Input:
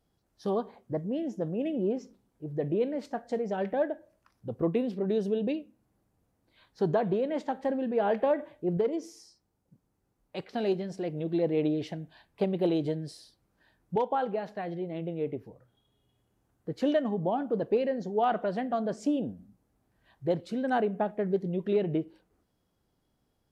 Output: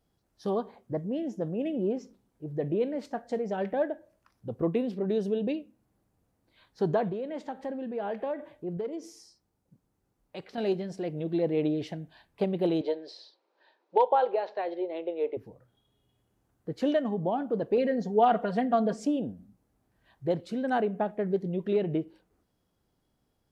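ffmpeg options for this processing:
ffmpeg -i in.wav -filter_complex "[0:a]asettb=1/sr,asplit=3[link_01][link_02][link_03];[link_01]atrim=end=7.094[link_04];[link_02]atrim=start=7.09:end=10.58,asetpts=PTS-STARTPTS,afade=type=in:duration=0.004:curve=qsin,afade=type=out:start_time=3.486:duration=0.004:curve=qsin,acompressor=threshold=-41dB:ratio=1.5:attack=3.2:release=140:knee=1:detection=peak[link_05];[link_03]atrim=start=10.576[link_06];[link_04][link_05]acrossfade=duration=0.004:curve1=hsin:curve2=qsin[link_07];[link_07][link_06]acrossfade=duration=0.004:curve1=qsin:curve2=hsin,asettb=1/sr,asplit=3[link_08][link_09][link_10];[link_08]atrim=end=12.814[link_11];[link_09]atrim=start=12.81:end=15.37,asetpts=PTS-STARTPTS,afade=type=in:duration=0.004:curve=qsin,afade=type=out:start_time=2.556:duration=0.004:curve=qsin,highpass=frequency=370:width=0.5412,highpass=frequency=370:width=1.3066,equalizer=frequency=370:width_type=q:width=4:gain=6,equalizer=frequency=550:width_type=q:width=4:gain=7,equalizer=frequency=920:width_type=q:width=4:gain=8,equalizer=frequency=2500:width_type=q:width=4:gain=3,equalizer=frequency=4000:width_type=q:width=4:gain=6,lowpass=frequency=5200:width=0.5412,lowpass=frequency=5200:width=1.3066[link_12];[link_10]atrim=start=15.366[link_13];[link_11][link_12]acrossfade=duration=0.004:curve1=hsin:curve2=qsin[link_14];[link_14][link_13]acrossfade=duration=0.004:curve1=qsin:curve2=hsin,asettb=1/sr,asplit=3[link_15][link_16][link_17];[link_15]atrim=end=17.774[link_18];[link_16]atrim=start=17.77:end=19.05,asetpts=PTS-STARTPTS,afade=type=in:duration=0.004:curve=qsin,afade=type=out:start_time=1.276:duration=0.004:curve=qsin,aecho=1:1:4.3:0.87,atrim=end_sample=56448[link_19];[link_17]atrim=start=19.046[link_20];[link_18][link_19]acrossfade=duration=0.004:curve1=hsin:curve2=qsin[link_21];[link_21][link_20]acrossfade=duration=0.004:curve1=qsin:curve2=hsin" out.wav

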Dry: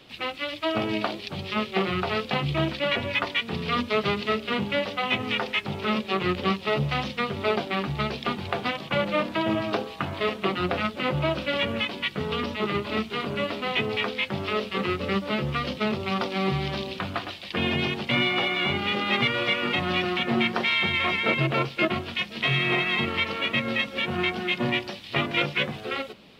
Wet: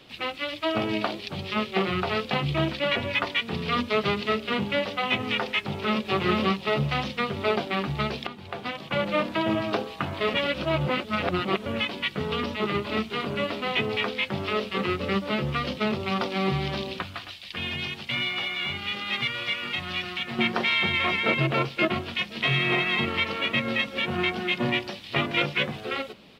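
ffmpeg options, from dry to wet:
ffmpeg -i in.wav -filter_complex "[0:a]asplit=2[link_01][link_02];[link_02]afade=type=in:start_time=5.61:duration=0.01,afade=type=out:start_time=6.02:duration=0.01,aecho=0:1:440|880|1320:0.841395|0.126209|0.0189314[link_03];[link_01][link_03]amix=inputs=2:normalize=0,asettb=1/sr,asplit=3[link_04][link_05][link_06];[link_04]atrim=end=17.024[link_07];[link_05]atrim=start=17.02:end=20.39,asetpts=PTS-STARTPTS,afade=type=in:duration=0.004:curve=qsin,afade=type=out:start_time=3.366:duration=0.004:curve=qsin,equalizer=frequency=390:width=0.32:gain=-13[link_08];[link_06]atrim=start=20.386[link_09];[link_07][link_08]acrossfade=duration=0.004:curve1=hsin:curve2=qsin[link_10];[link_10][link_09]acrossfade=duration=0.004:curve1=qsin:curve2=hsin,asplit=4[link_11][link_12][link_13][link_14];[link_11]atrim=end=8.27,asetpts=PTS-STARTPTS,afade=type=out:start_time=8.266:duration=0.004:curve=hsin:silence=0.211349[link_15];[link_12]atrim=start=8.27:end=10.342,asetpts=PTS-STARTPTS,afade=type=in:duration=0.88:silence=0.211349[link_16];[link_13]atrim=start=10.338:end=11.662,asetpts=PTS-STARTPTS,areverse[link_17];[link_14]atrim=start=11.658[link_18];[link_15][link_16]concat=n=2:v=0:a=1[link_19];[link_19][link_17]acrossfade=duration=0.004:curve1=hsin:curve2=hsin[link_20];[link_20][link_18]acrossfade=duration=0.004:curve1=hsin:curve2=hsin" out.wav

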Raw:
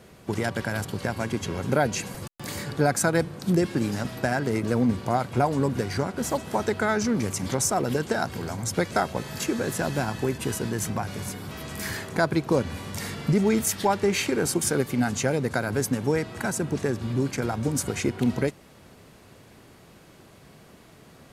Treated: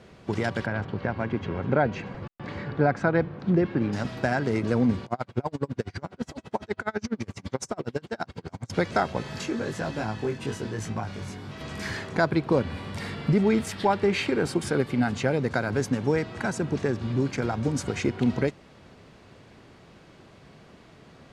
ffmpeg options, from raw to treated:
ffmpeg -i in.wav -filter_complex "[0:a]asettb=1/sr,asplit=3[link_01][link_02][link_03];[link_01]atrim=end=0.664[link_04];[link_02]atrim=start=0.66:end=3.93,asetpts=PTS-STARTPTS,afade=type=in:duration=0.004:curve=qsin,afade=type=out:start_time=3.266:duration=0.004:curve=qsin,lowpass=2300[link_05];[link_03]atrim=start=3.926[link_06];[link_04][link_05]acrossfade=duration=0.004:curve1=hsin:curve2=qsin[link_07];[link_07][link_06]acrossfade=duration=0.004:curve1=qsin:curve2=hsin,asettb=1/sr,asplit=3[link_08][link_09][link_10];[link_08]atrim=end=5.054[link_11];[link_09]atrim=start=5.05:end=8.7,asetpts=PTS-STARTPTS,afade=type=in:duration=0.004:curve=qsin,afade=type=out:start_time=3.646:duration=0.004:curve=qsin,aeval=exprs='val(0)*pow(10,-35*(0.5-0.5*cos(2*PI*12*n/s))/20)':channel_layout=same[link_12];[link_10]atrim=start=8.696[link_13];[link_11][link_12]acrossfade=duration=0.004:curve1=hsin:curve2=qsin[link_14];[link_14][link_13]acrossfade=duration=0.004:curve1=qsin:curve2=hsin,asplit=3[link_15][link_16][link_17];[link_15]afade=type=out:start_time=9.41:duration=0.02[link_18];[link_16]flanger=delay=18:depth=3.7:speed=1.1,afade=type=in:start_time=9.41:duration=0.02,afade=type=out:start_time=11.59:duration=0.02[link_19];[link_17]afade=type=in:start_time=11.59:duration=0.02[link_20];[link_18][link_19][link_20]amix=inputs=3:normalize=0,asettb=1/sr,asplit=3[link_21][link_22][link_23];[link_21]atrim=end=12.304[link_24];[link_22]atrim=start=12.3:end=15.39,asetpts=PTS-STARTPTS,afade=type=in:duration=0.004:curve=qsin,afade=type=out:start_time=3.086:duration=0.004:curve=qsin,equalizer=frequency=6300:width_type=o:width=0.49:gain=-7.5[link_25];[link_23]atrim=start=15.386[link_26];[link_24][link_25]acrossfade=duration=0.004:curve1=hsin:curve2=qsin[link_27];[link_27][link_26]acrossfade=duration=0.004:curve1=qsin:curve2=hsin,lowpass=5100" out.wav

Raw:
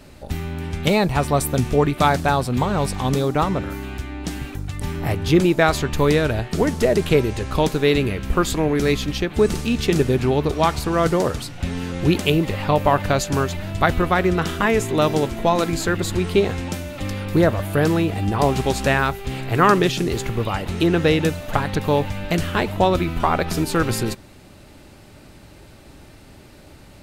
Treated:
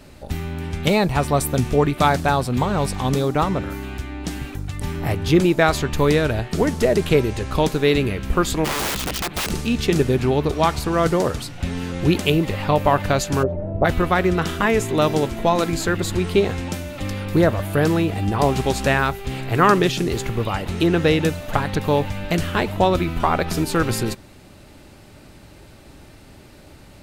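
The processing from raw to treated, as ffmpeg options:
ffmpeg -i in.wav -filter_complex "[0:a]asplit=3[link_01][link_02][link_03];[link_01]afade=type=out:start_time=8.64:duration=0.02[link_04];[link_02]aeval=exprs='(mod(8.91*val(0)+1,2)-1)/8.91':channel_layout=same,afade=type=in:start_time=8.64:duration=0.02,afade=type=out:start_time=9.49:duration=0.02[link_05];[link_03]afade=type=in:start_time=9.49:duration=0.02[link_06];[link_04][link_05][link_06]amix=inputs=3:normalize=0,asplit=3[link_07][link_08][link_09];[link_07]afade=type=out:start_time=13.42:duration=0.02[link_10];[link_08]lowpass=frequency=550:width_type=q:width=3.4,afade=type=in:start_time=13.42:duration=0.02,afade=type=out:start_time=13.84:duration=0.02[link_11];[link_09]afade=type=in:start_time=13.84:duration=0.02[link_12];[link_10][link_11][link_12]amix=inputs=3:normalize=0" out.wav

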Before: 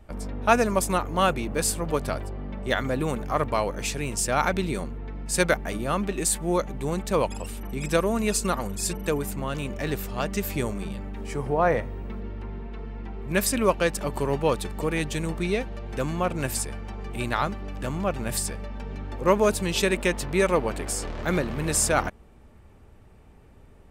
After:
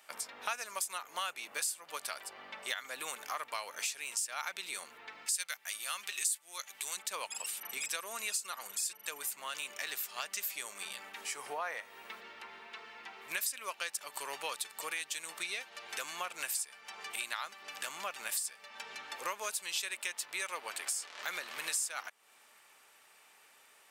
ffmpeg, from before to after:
ffmpeg -i in.wav -filter_complex "[0:a]asettb=1/sr,asplit=3[link_01][link_02][link_03];[link_01]atrim=end=5.264[link_04];[link_02]atrim=start=5.26:end=6.97,asetpts=PTS-STARTPTS,afade=type=in:duration=0.004:curve=qsin,afade=type=out:start_time=1.706:duration=0.004:curve=qsin,tiltshelf=frequency=1400:gain=-7.5[link_05];[link_03]atrim=start=6.966[link_06];[link_04][link_05]acrossfade=duration=0.004:curve1=hsin:curve2=qsin[link_07];[link_07][link_06]acrossfade=duration=0.004:curve1=qsin:curve2=hsin,highpass=1100,highshelf=frequency=2300:gain=11.5,acompressor=threshold=-37dB:ratio=4" out.wav

